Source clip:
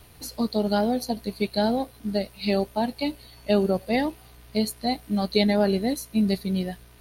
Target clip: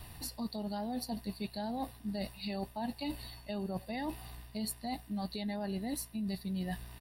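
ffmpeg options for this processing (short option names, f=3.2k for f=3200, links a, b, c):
-af "bandreject=f=6.4k:w=6.8,aecho=1:1:1.1:0.5,alimiter=limit=-19dB:level=0:latency=1:release=76,areverse,acompressor=threshold=-35dB:ratio=6,areverse"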